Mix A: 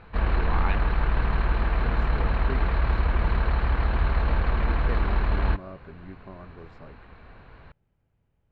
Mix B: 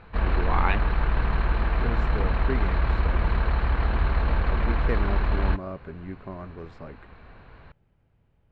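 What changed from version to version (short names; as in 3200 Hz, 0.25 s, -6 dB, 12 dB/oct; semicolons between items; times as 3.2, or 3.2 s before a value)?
speech +6.0 dB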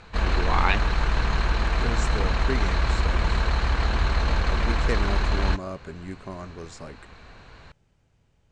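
master: remove air absorption 400 m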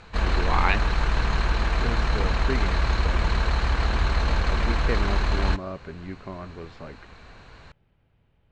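speech: add LPF 3600 Hz 24 dB/oct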